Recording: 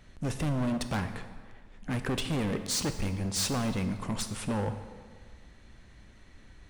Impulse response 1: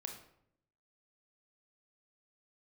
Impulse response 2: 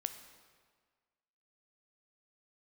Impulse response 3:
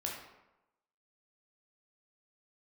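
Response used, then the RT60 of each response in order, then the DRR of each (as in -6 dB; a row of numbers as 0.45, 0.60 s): 2; 0.70, 1.6, 0.95 s; 3.0, 8.5, -2.0 dB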